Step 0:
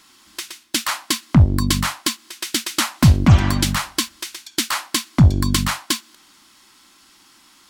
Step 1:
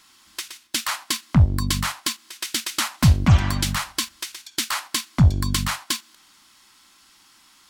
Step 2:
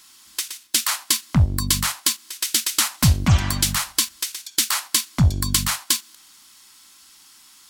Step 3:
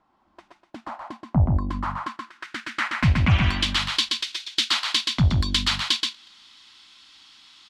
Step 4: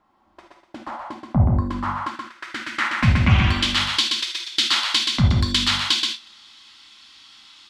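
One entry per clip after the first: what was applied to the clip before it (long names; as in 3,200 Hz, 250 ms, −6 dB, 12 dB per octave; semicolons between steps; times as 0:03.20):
parametric band 320 Hz −6 dB 1.5 octaves; in parallel at −2 dB: output level in coarse steps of 15 dB; on the sum: level −5 dB
high-shelf EQ 4,500 Hz +11.5 dB; level −1.5 dB
low-pass filter sweep 730 Hz → 3,600 Hz, 0:01.31–0:03.86; single-tap delay 127 ms −3.5 dB; level −3 dB
reverb whose tail is shaped and stops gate 100 ms flat, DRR 3 dB; level +1.5 dB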